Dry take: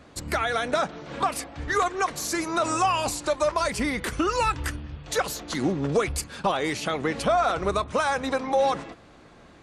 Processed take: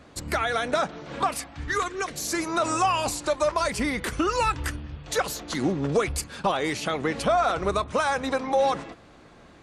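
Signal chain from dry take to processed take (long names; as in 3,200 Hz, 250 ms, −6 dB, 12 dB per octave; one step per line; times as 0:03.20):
0:01.34–0:02.27: parametric band 380 Hz → 1,200 Hz −10.5 dB 0.89 octaves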